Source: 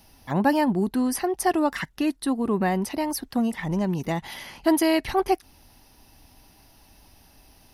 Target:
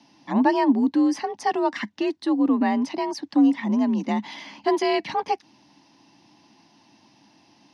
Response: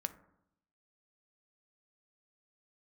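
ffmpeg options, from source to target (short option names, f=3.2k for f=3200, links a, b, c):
-af "highpass=140,equalizer=f=160:t=q:w=4:g=7,equalizer=f=230:t=q:w=4:g=8,equalizer=f=390:t=q:w=4:g=-10,equalizer=f=890:t=q:w=4:g=3,equalizer=f=1.3k:t=q:w=4:g=-6,lowpass=f=6k:w=0.5412,lowpass=f=6k:w=1.3066,afreqshift=48"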